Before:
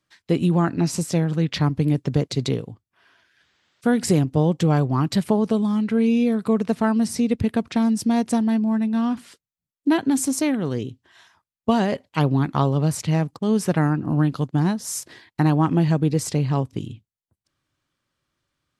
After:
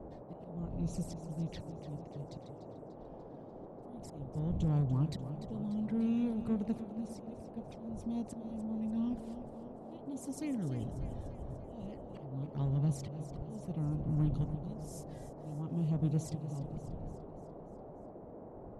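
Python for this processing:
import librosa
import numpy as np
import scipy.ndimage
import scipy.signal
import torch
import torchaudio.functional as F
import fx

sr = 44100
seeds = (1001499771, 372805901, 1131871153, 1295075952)

p1 = fx.dmg_wind(x, sr, seeds[0], corner_hz=220.0, level_db=-35.0)
p2 = fx.tilt_shelf(p1, sr, db=9.5, hz=830.0)
p3 = fx.env_flanger(p2, sr, rest_ms=3.3, full_db=-10.0)
p4 = fx.auto_swell(p3, sr, attack_ms=690.0)
p5 = 10.0 ** (-15.0 / 20.0) * np.tanh(p4 / 10.0 ** (-15.0 / 20.0))
p6 = p4 + (p5 * librosa.db_to_amplitude(-8.0))
p7 = fx.tone_stack(p6, sr, knobs='5-5-5')
p8 = fx.dmg_noise_band(p7, sr, seeds[1], low_hz=110.0, high_hz=710.0, level_db=-46.0)
p9 = p8 + fx.echo_feedback(p8, sr, ms=294, feedback_pct=57, wet_db=-12.0, dry=0)
y = p9 * librosa.db_to_amplitude(-4.0)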